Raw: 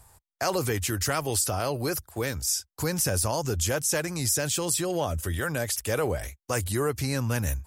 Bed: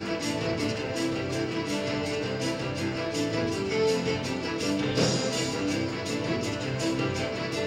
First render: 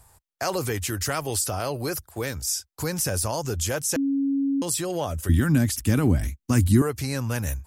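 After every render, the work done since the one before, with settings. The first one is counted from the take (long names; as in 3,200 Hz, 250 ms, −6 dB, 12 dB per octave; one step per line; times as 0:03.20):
0:03.96–0:04.62: beep over 276 Hz −20.5 dBFS
0:05.29–0:06.82: low shelf with overshoot 360 Hz +10.5 dB, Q 3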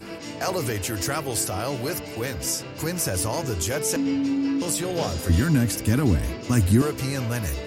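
mix in bed −6 dB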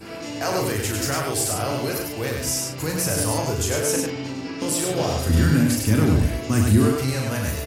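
double-tracking delay 38 ms −5 dB
on a send: single-tap delay 100 ms −3.5 dB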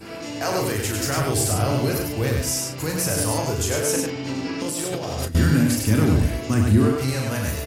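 0:01.17–0:02.42: low-shelf EQ 220 Hz +10 dB
0:04.27–0:05.35: compressor whose output falls as the input rises −27 dBFS
0:06.54–0:07.01: high-shelf EQ 4,600 Hz −9.5 dB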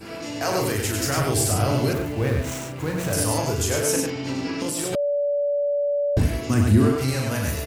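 0:01.93–0:03.13: running median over 9 samples
0:04.95–0:06.17: beep over 576 Hz −19.5 dBFS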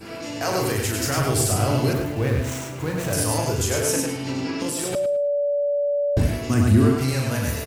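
repeating echo 108 ms, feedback 24%, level −11 dB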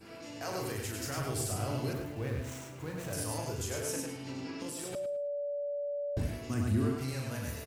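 level −13.5 dB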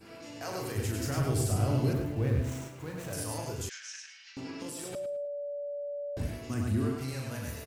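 0:00.76–0:02.68: low-shelf EQ 430 Hz +9 dB
0:03.69–0:04.37: elliptic band-pass filter 1,600–6,100 Hz, stop band 80 dB
0:05.25–0:06.20: low-shelf EQ 220 Hz −10.5 dB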